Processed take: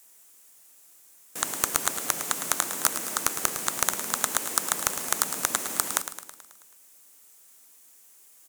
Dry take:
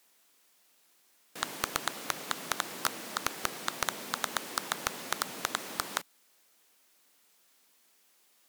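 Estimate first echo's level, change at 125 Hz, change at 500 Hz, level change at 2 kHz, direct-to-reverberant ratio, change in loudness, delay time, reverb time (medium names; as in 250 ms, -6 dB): -10.5 dB, +4.0 dB, +4.0 dB, +3.5 dB, no reverb, +8.0 dB, 108 ms, no reverb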